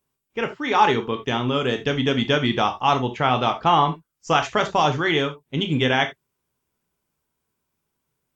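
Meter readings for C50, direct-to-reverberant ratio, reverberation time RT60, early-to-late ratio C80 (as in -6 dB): 13.5 dB, 6.0 dB, not exponential, 20.5 dB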